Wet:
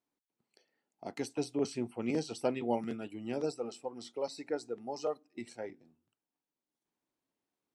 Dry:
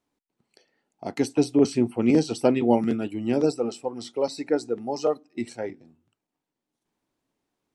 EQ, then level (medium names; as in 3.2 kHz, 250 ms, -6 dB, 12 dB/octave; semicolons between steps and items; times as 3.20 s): bass shelf 93 Hz -10.5 dB; dynamic bell 290 Hz, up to -5 dB, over -33 dBFS, Q 1.3; -9.0 dB